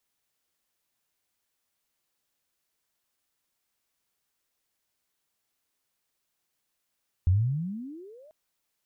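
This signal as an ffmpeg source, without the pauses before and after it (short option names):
-f lavfi -i "aevalsrc='pow(10,(-17-33.5*t/1.04)/20)*sin(2*PI*84.6*1.04/(35*log(2)/12)*(exp(35*log(2)/12*t/1.04)-1))':d=1.04:s=44100"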